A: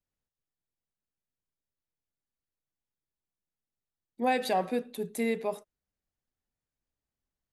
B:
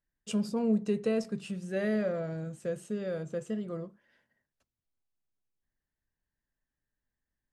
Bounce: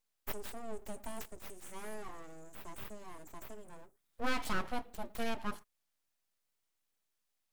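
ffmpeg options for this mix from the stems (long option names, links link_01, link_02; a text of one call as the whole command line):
ffmpeg -i stem1.wav -i stem2.wav -filter_complex "[0:a]volume=-4dB[link_01];[1:a]aexciter=amount=14.3:drive=5.4:freq=6200,volume=-12dB[link_02];[link_01][link_02]amix=inputs=2:normalize=0,aeval=exprs='abs(val(0))':channel_layout=same" out.wav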